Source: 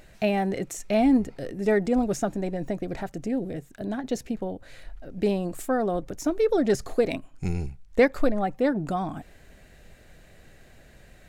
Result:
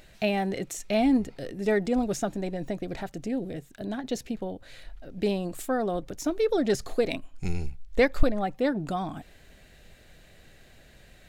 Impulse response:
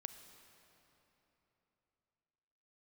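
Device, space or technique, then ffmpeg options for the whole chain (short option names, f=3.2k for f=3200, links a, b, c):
presence and air boost: -filter_complex "[0:a]equalizer=f=3.6k:t=o:w=1.1:g=6,highshelf=f=11k:g=4,asettb=1/sr,asplit=3[a][b][c];[a]atrim=end=6.744[d];[b]atrim=start=6.74:end=8.23,asetpts=PTS-STARTPTS,afade=t=in:d=0.004:c=qsin,afade=t=out:st=1.486:d=0.004:c=qsin,asubboost=boost=8:cutoff=55[e];[c]atrim=start=8.226[f];[d][e]acrossfade=d=0.004:c1=hsin:c2=qsin[g];[g][f]acrossfade=d=0.004:c1=qsin:c2=hsin,volume=-2.5dB"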